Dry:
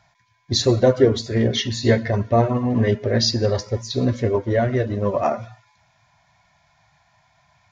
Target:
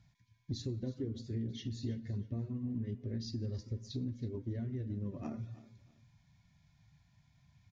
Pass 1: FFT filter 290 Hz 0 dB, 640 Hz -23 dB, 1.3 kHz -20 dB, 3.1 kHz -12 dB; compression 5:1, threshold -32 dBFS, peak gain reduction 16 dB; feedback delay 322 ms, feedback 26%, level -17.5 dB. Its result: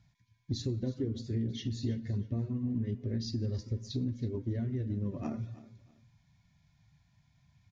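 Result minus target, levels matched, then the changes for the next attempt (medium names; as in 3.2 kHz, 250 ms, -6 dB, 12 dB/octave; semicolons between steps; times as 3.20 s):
compression: peak gain reduction -5 dB
change: compression 5:1, threshold -38 dBFS, peak gain reduction 20.5 dB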